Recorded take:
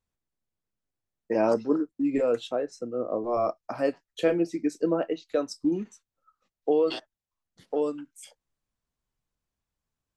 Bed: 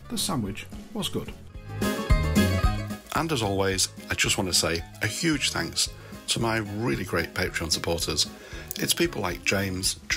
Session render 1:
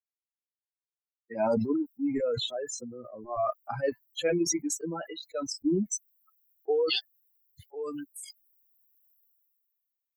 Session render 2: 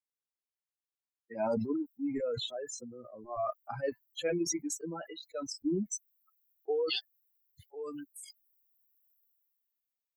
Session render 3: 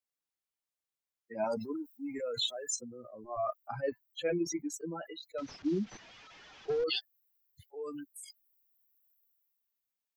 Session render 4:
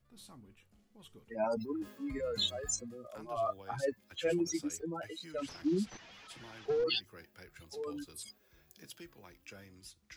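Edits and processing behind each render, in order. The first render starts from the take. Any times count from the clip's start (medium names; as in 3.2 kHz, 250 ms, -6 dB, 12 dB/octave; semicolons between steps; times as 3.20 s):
expander on every frequency bin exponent 3; decay stretcher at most 25 dB/s
trim -5 dB
1.44–2.76 s: tilt EQ +3 dB/octave; 3.80–4.74 s: peaking EQ 8.9 kHz -14 dB 0.9 oct; 5.38–6.84 s: one-bit delta coder 32 kbps, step -49 dBFS
add bed -27.5 dB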